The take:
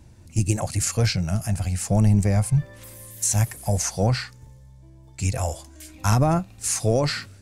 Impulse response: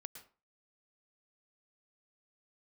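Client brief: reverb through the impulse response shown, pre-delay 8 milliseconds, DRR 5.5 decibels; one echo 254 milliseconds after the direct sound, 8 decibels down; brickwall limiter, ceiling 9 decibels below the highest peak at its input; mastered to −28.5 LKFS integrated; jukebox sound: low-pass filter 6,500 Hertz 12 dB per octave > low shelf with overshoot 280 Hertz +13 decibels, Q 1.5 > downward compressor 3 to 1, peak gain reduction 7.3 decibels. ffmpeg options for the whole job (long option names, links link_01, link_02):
-filter_complex "[0:a]alimiter=limit=-16dB:level=0:latency=1,aecho=1:1:254:0.398,asplit=2[link_01][link_02];[1:a]atrim=start_sample=2205,adelay=8[link_03];[link_02][link_03]afir=irnorm=-1:irlink=0,volume=-0.5dB[link_04];[link_01][link_04]amix=inputs=2:normalize=0,lowpass=6500,lowshelf=frequency=280:width_type=q:width=1.5:gain=13,acompressor=threshold=-9dB:ratio=3,volume=-13.5dB"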